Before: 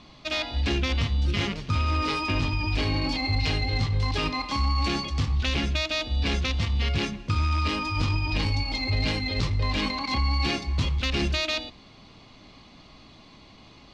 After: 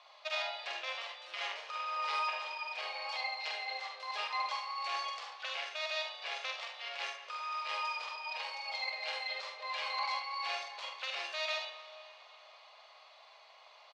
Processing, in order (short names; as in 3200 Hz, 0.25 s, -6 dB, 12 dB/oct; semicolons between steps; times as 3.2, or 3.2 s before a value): high shelf 3900 Hz -9 dB; limiter -21.5 dBFS, peak gain reduction 6.5 dB; steep high-pass 560 Hz 48 dB/oct; early reflections 46 ms -5 dB, 74 ms -8.5 dB; reverb RT60 3.4 s, pre-delay 40 ms, DRR 12 dB; gain -4 dB